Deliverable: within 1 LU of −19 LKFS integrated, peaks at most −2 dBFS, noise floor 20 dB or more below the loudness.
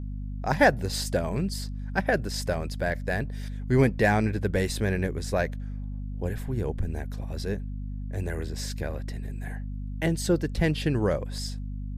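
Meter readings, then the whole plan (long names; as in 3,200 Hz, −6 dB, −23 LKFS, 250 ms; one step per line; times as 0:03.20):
mains hum 50 Hz; hum harmonics up to 250 Hz; level of the hum −31 dBFS; integrated loudness −28.5 LKFS; sample peak −8.0 dBFS; target loudness −19.0 LKFS
→ hum removal 50 Hz, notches 5
level +9.5 dB
brickwall limiter −2 dBFS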